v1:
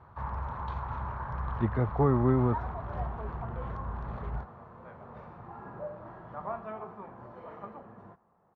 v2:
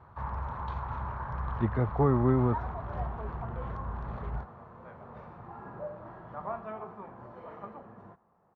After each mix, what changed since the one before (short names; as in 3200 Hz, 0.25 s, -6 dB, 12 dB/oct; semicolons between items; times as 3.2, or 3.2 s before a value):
none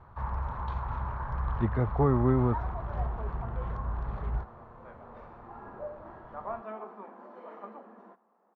speech: remove HPF 67 Hz; background: add elliptic high-pass 210 Hz